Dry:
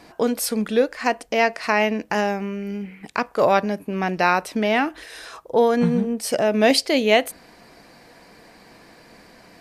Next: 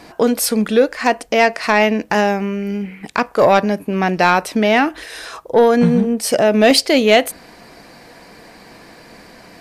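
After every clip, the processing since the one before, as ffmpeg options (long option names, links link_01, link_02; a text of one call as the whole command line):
ffmpeg -i in.wav -af "acontrast=76" out.wav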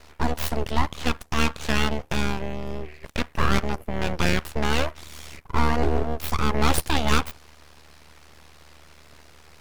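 ffmpeg -i in.wav -af "aeval=exprs='val(0)*sin(2*PI*38*n/s)':channel_layout=same,aeval=exprs='abs(val(0))':channel_layout=same,volume=-4dB" out.wav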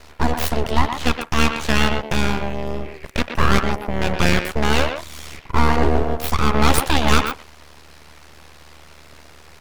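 ffmpeg -i in.wav -filter_complex "[0:a]asplit=2[link_01][link_02];[link_02]adelay=120,highpass=300,lowpass=3400,asoftclip=type=hard:threshold=-14.5dB,volume=-6dB[link_03];[link_01][link_03]amix=inputs=2:normalize=0,volume=5dB" out.wav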